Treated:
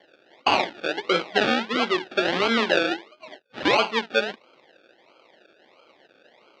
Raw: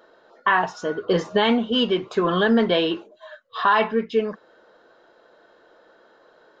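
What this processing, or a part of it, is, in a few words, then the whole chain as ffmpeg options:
circuit-bent sampling toy: -af "acrusher=samples=34:mix=1:aa=0.000001:lfo=1:lforange=20.4:lforate=1.5,highpass=420,equalizer=f=460:t=q:w=4:g=-6,equalizer=f=680:t=q:w=4:g=-4,equalizer=f=1k:t=q:w=4:g=-5,equalizer=f=3.3k:t=q:w=4:g=3,lowpass=f=4.3k:w=0.5412,lowpass=f=4.3k:w=1.3066,volume=3.5dB"

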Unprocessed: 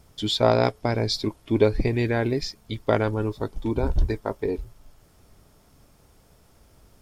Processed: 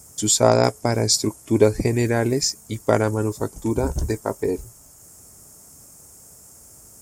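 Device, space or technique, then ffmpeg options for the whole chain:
budget condenser microphone: -af "highpass=70,highshelf=f=5.2k:t=q:w=3:g=13,volume=3.5dB"

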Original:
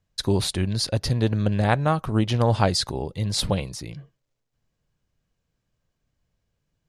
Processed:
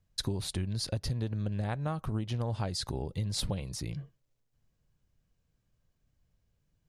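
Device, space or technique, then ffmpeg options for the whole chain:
ASMR close-microphone chain: -af "lowshelf=f=190:g=7,acompressor=threshold=-26dB:ratio=6,highshelf=f=9k:g=4.5,volume=-4dB"

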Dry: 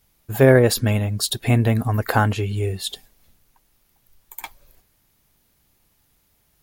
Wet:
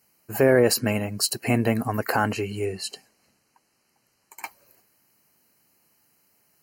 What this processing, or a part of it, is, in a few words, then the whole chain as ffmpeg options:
PA system with an anti-feedback notch: -filter_complex "[0:a]highpass=190,asuperstop=centerf=3500:order=20:qfactor=4.2,alimiter=limit=-8.5dB:level=0:latency=1:release=13,asettb=1/sr,asplit=3[a][b][c];[a]atrim=end=2.654[d];[b]atrim=start=2.65:end=4.43,asetpts=PTS-STARTPTS,afade=t=in:d=0.004:c=qsin,afade=t=out:st=1.776:d=0.004:c=qsin,lowpass=8.9k[e];[c]atrim=start=4.426[f];[d][e]acrossfade=d=0.004:c1=hsin:c2=qsin[g];[g][f]acrossfade=d=0.004:c1=qsin:c2=hsin"

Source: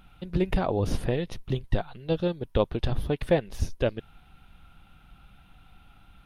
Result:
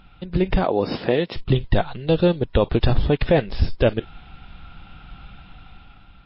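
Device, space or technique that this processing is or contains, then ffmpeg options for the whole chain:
low-bitrate web radio: -filter_complex "[0:a]asettb=1/sr,asplit=3[a][b][c];[a]atrim=end=0.644[d];[b]atrim=start=0.64:end=1.36,asetpts=PTS-STARTPTS,afade=t=in:d=0.004:c=qsin,afade=t=out:st=0.716:d=0.004:c=qsin,highpass=230[e];[c]atrim=start=1.356[f];[d][e]acrossfade=d=0.004:c1=hsin:c2=qsin[g];[g][f]acrossfade=d=0.004:c1=qsin:c2=hsin,dynaudnorm=f=350:g=5:m=7.5dB,alimiter=limit=-11.5dB:level=0:latency=1:release=44,volume=5dB" -ar 12000 -c:a libmp3lame -b:a 24k

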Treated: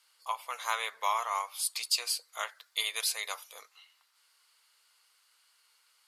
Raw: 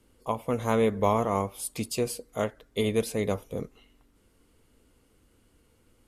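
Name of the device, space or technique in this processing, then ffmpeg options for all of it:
headphones lying on a table: -filter_complex "[0:a]asettb=1/sr,asplit=3[a][b][c];[a]atrim=end=2.474[d];[b]atrim=start=2.47:end=3.63,asetpts=PTS-STARTPTS,afade=t=in:d=0.004:c=qsin,afade=t=out:st=1.156:d=0.004:c=qsin,highshelf=f=7k:g=5.5[e];[c]atrim=start=3.626[f];[d][e]acrossfade=d=0.004:c1=hsin:c2=qsin[g];[g][f]acrossfade=d=0.004:c1=qsin:c2=hsin,highpass=f=1k:w=0.5412,highpass=f=1k:w=1.3066,equalizer=f=4.5k:t=o:w=0.53:g=10,volume=2dB"

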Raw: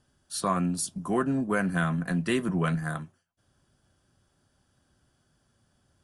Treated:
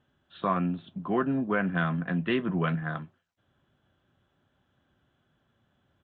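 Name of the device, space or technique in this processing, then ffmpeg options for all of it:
Bluetooth headset: -af "highpass=f=100:p=1,aresample=8000,aresample=44100" -ar 16000 -c:a sbc -b:a 64k

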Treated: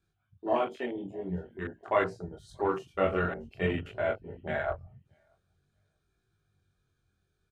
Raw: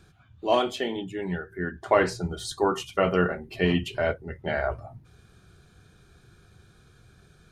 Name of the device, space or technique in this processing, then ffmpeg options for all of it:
double-tracked vocal: -filter_complex "[0:a]asettb=1/sr,asplit=3[a][b][c];[a]atrim=end=1.884[d];[b]atrim=start=1.88:end=2.48,asetpts=PTS-STARTPTS,afade=t=in:d=0.004:c=qsin,afade=t=out:st=0.596:d=0.004:c=qsin,lowshelf=f=400:g=-4[e];[c]atrim=start=2.476[f];[d][e]acrossfade=d=0.004:c1=hsin:c2=qsin[g];[g][f]acrossfade=d=0.004:c1=qsin:c2=hsin,asplit=2[h][i];[i]adelay=21,volume=-5dB[j];[h][j]amix=inputs=2:normalize=0,aecho=1:1:631|1262:0.0891|0.0152,flanger=delay=18:depth=6.7:speed=0.49,afwtdn=0.0178,equalizer=f=82:t=o:w=0.77:g=2.5,volume=-3dB"

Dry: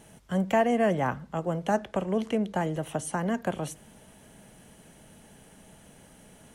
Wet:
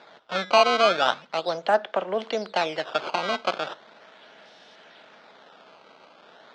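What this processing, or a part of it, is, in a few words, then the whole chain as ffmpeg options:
circuit-bent sampling toy: -af "acrusher=samples=14:mix=1:aa=0.000001:lfo=1:lforange=22.4:lforate=0.38,highpass=520,equalizer=f=660:t=q:w=4:g=3,equalizer=f=1.4k:t=q:w=4:g=5,equalizer=f=3.6k:t=q:w=4:g=6,lowpass=f=4.9k:w=0.5412,lowpass=f=4.9k:w=1.3066,volume=5.5dB"

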